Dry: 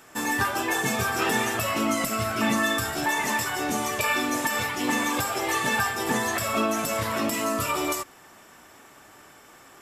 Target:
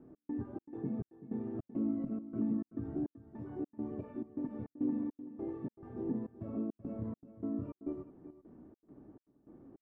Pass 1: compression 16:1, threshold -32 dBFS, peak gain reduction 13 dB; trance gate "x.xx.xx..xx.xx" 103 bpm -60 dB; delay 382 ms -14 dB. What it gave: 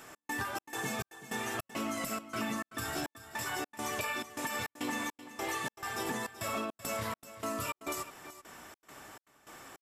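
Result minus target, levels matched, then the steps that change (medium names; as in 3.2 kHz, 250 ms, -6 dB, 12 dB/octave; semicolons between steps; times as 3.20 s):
250 Hz band -8.0 dB
add after compression: resonant low-pass 290 Hz, resonance Q 2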